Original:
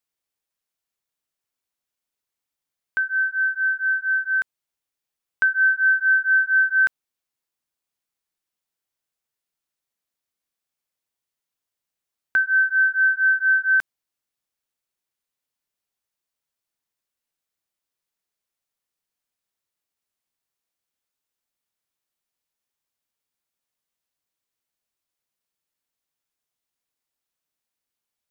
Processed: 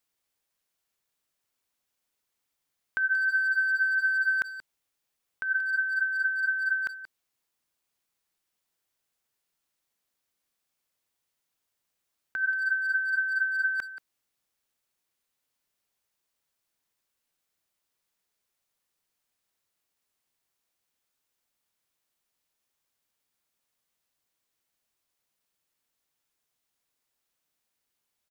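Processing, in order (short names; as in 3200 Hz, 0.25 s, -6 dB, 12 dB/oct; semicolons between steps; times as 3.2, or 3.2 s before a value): negative-ratio compressor -26 dBFS, ratio -1; speakerphone echo 0.18 s, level -10 dB; gain -2 dB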